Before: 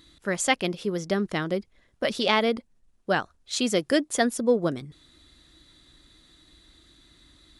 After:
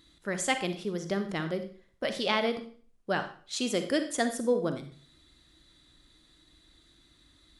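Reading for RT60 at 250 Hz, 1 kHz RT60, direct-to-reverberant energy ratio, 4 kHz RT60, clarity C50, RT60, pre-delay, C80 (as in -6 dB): 0.45 s, 0.45 s, 8.0 dB, 0.40 s, 10.0 dB, 0.45 s, 38 ms, 14.0 dB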